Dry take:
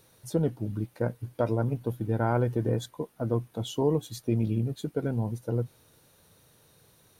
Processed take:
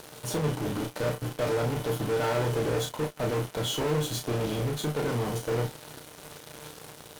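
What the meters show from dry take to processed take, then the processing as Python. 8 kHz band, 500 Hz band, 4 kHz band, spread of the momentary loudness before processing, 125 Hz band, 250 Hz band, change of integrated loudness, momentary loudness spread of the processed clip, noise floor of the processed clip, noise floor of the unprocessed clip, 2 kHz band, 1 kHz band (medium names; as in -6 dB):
+10.0 dB, +2.0 dB, +10.0 dB, 6 LU, -2.0 dB, -2.5 dB, +0.5 dB, 16 LU, -48 dBFS, -62 dBFS, +7.5 dB, +3.0 dB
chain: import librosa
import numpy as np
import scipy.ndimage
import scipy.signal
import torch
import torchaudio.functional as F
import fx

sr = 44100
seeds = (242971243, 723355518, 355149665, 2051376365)

p1 = fx.bin_compress(x, sr, power=0.6)
p2 = fx.low_shelf(p1, sr, hz=390.0, db=-5.5)
p3 = fx.comb_fb(p2, sr, f0_hz=150.0, decay_s=0.16, harmonics='all', damping=0.0, mix_pct=70)
p4 = fx.fuzz(p3, sr, gain_db=46.0, gate_db=-49.0)
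p5 = p3 + F.gain(torch.from_numpy(p4), -8.0).numpy()
p6 = fx.doubler(p5, sr, ms=33.0, db=-5)
y = F.gain(torch.from_numpy(p6), -8.0).numpy()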